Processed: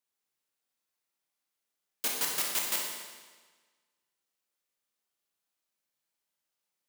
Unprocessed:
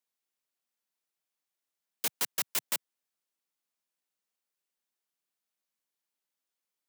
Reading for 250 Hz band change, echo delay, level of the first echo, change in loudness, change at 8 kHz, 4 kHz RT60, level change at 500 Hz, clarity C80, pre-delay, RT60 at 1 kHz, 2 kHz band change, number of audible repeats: +2.5 dB, no echo audible, no echo audible, +1.5 dB, +2.5 dB, 1.3 s, +3.0 dB, 3.5 dB, 19 ms, 1.4 s, +2.5 dB, no echo audible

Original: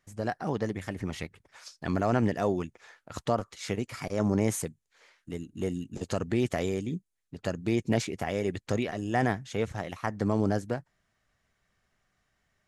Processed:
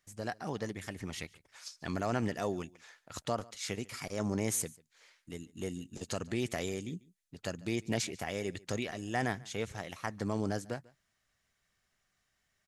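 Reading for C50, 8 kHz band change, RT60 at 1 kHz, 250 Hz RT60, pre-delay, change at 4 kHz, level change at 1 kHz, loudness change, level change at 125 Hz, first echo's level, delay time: no reverb audible, +2.0 dB, no reverb audible, no reverb audible, no reverb audible, 0.0 dB, −6.0 dB, −6.0 dB, −7.5 dB, −23.5 dB, 144 ms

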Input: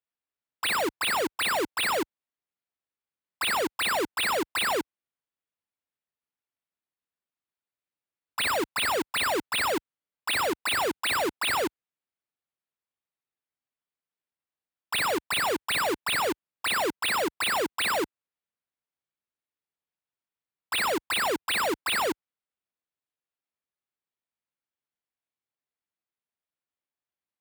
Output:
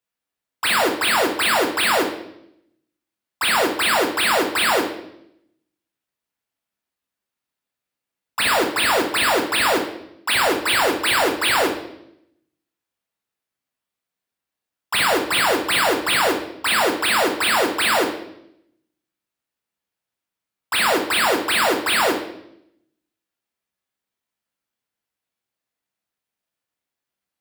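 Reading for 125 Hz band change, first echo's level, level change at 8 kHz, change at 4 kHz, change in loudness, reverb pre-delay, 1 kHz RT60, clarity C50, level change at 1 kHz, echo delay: +8.0 dB, no echo audible, +8.0 dB, +8.5 dB, +8.5 dB, 11 ms, 0.70 s, 7.0 dB, +8.5 dB, no echo audible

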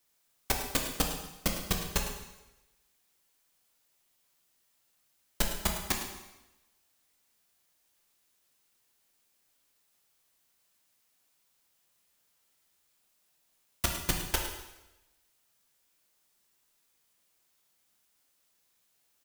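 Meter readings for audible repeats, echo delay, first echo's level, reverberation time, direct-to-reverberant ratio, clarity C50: 1, 106 ms, −12.0 dB, 1.0 s, 1.5 dB, 4.5 dB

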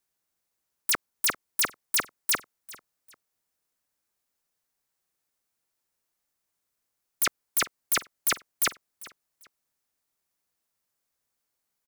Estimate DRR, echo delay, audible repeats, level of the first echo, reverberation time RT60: no reverb audible, 396 ms, 2, −19.5 dB, no reverb audible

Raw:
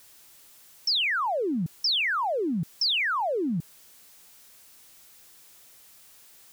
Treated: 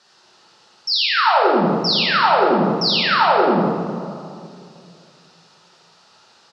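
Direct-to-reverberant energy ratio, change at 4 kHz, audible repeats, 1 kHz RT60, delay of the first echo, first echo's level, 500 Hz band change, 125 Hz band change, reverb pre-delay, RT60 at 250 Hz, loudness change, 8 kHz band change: −6.0 dB, +7.5 dB, 1, 2.3 s, 84 ms, −2.5 dB, +12.5 dB, +9.0 dB, 4 ms, 2.6 s, +9.5 dB, can't be measured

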